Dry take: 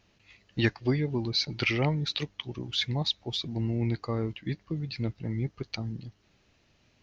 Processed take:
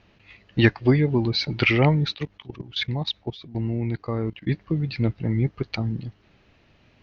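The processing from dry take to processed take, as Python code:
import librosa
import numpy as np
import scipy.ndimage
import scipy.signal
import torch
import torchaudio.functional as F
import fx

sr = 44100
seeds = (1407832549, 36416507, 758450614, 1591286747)

y = scipy.signal.sosfilt(scipy.signal.butter(2, 3200.0, 'lowpass', fs=sr, output='sos'), x)
y = fx.level_steps(y, sr, step_db=17, at=(2.13, 4.47), fade=0.02)
y = y * 10.0 ** (8.5 / 20.0)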